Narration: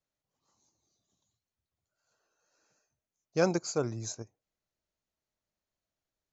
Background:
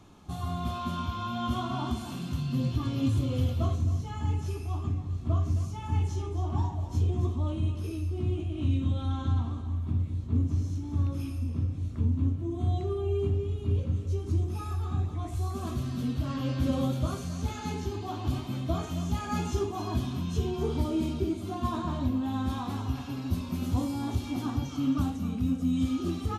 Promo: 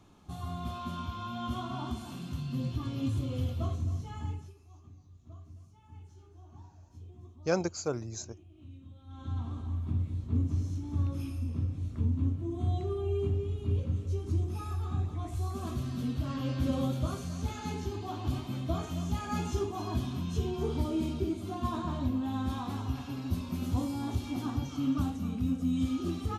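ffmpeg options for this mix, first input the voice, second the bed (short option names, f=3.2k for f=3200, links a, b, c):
-filter_complex "[0:a]adelay=4100,volume=-2dB[a];[1:a]volume=15dB,afade=t=out:st=4.19:d=0.35:silence=0.133352,afade=t=in:st=9.06:d=0.58:silence=0.1[b];[a][b]amix=inputs=2:normalize=0"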